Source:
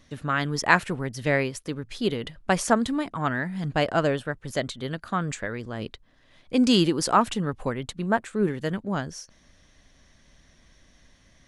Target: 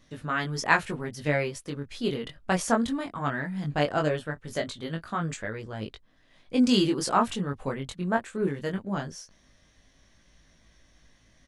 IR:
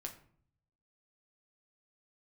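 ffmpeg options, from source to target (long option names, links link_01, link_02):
-filter_complex "[0:a]flanger=delay=18.5:depth=3.5:speed=0.19,asplit=3[link_01][link_02][link_03];[link_01]afade=type=out:start_time=4.35:duration=0.02[link_04];[link_02]asplit=2[link_05][link_06];[link_06]adelay=24,volume=-12.5dB[link_07];[link_05][link_07]amix=inputs=2:normalize=0,afade=type=in:start_time=4.35:duration=0.02,afade=type=out:start_time=5.11:duration=0.02[link_08];[link_03]afade=type=in:start_time=5.11:duration=0.02[link_09];[link_04][link_08][link_09]amix=inputs=3:normalize=0"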